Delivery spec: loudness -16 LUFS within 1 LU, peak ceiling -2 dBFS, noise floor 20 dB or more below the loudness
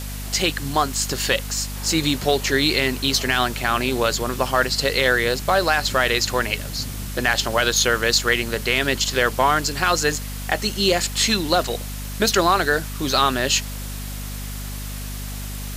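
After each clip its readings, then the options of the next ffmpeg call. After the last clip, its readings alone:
hum 50 Hz; harmonics up to 250 Hz; hum level -29 dBFS; noise floor -30 dBFS; noise floor target -40 dBFS; loudness -20.0 LUFS; peak -5.0 dBFS; loudness target -16.0 LUFS
-> -af "bandreject=f=50:t=h:w=4,bandreject=f=100:t=h:w=4,bandreject=f=150:t=h:w=4,bandreject=f=200:t=h:w=4,bandreject=f=250:t=h:w=4"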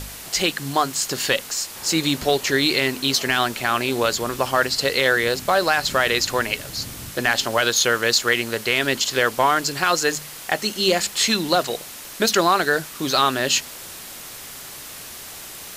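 hum none; noise floor -37 dBFS; noise floor target -40 dBFS
-> -af "afftdn=nr=6:nf=-37"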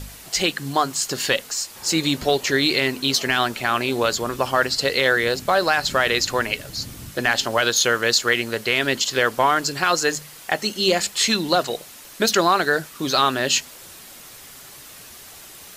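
noise floor -42 dBFS; loudness -20.5 LUFS; peak -5.5 dBFS; loudness target -16.0 LUFS
-> -af "volume=4.5dB,alimiter=limit=-2dB:level=0:latency=1"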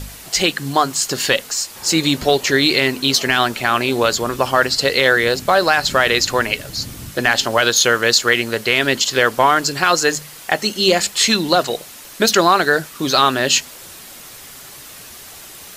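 loudness -16.0 LUFS; peak -2.0 dBFS; noise floor -38 dBFS

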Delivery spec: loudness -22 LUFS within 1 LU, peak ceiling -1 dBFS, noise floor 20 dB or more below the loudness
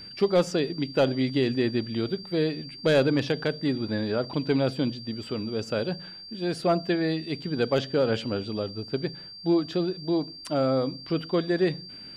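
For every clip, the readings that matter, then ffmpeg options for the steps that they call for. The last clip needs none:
steady tone 4700 Hz; tone level -41 dBFS; loudness -27.0 LUFS; peak -12.0 dBFS; loudness target -22.0 LUFS
-> -af "bandreject=f=4.7k:w=30"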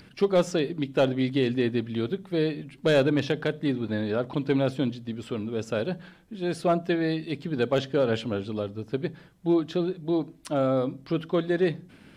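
steady tone none; loudness -27.0 LUFS; peak -12.0 dBFS; loudness target -22.0 LUFS
-> -af "volume=5dB"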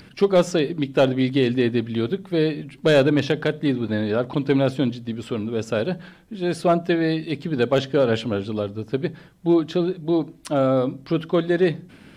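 loudness -22.0 LUFS; peak -7.0 dBFS; noise floor -48 dBFS

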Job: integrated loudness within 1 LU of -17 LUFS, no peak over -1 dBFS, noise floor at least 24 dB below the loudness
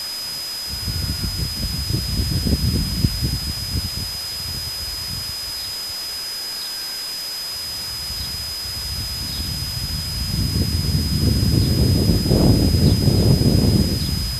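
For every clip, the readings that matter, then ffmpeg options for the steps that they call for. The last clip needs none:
steady tone 5000 Hz; tone level -26 dBFS; noise floor -28 dBFS; noise floor target -45 dBFS; loudness -21.0 LUFS; peak -1.5 dBFS; loudness target -17.0 LUFS
-> -af "bandreject=f=5k:w=30"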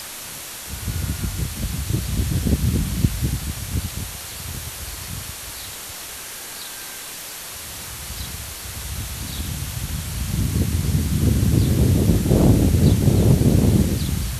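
steady tone none; noise floor -34 dBFS; noise floor target -47 dBFS
-> -af "afftdn=nr=13:nf=-34"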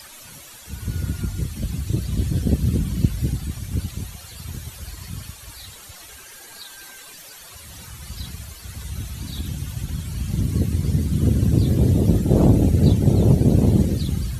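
noise floor -42 dBFS; noise floor target -45 dBFS
-> -af "afftdn=nr=6:nf=-42"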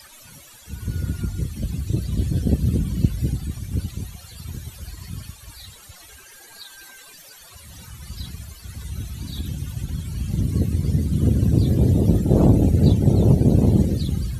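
noise floor -46 dBFS; loudness -21.0 LUFS; peak -2.0 dBFS; loudness target -17.0 LUFS
-> -af "volume=4dB,alimiter=limit=-1dB:level=0:latency=1"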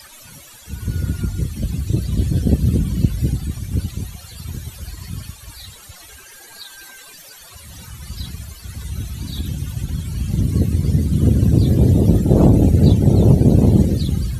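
loudness -17.0 LUFS; peak -1.0 dBFS; noise floor -42 dBFS

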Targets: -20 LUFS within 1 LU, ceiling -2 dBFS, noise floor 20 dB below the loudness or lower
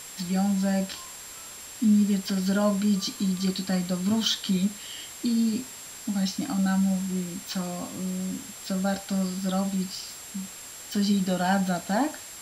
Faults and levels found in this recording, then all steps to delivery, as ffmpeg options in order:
steady tone 7500 Hz; tone level -43 dBFS; noise floor -42 dBFS; noise floor target -47 dBFS; loudness -27.0 LUFS; peak -12.0 dBFS; loudness target -20.0 LUFS
-> -af "bandreject=f=7.5k:w=30"
-af "afftdn=nr=6:nf=-42"
-af "volume=7dB"

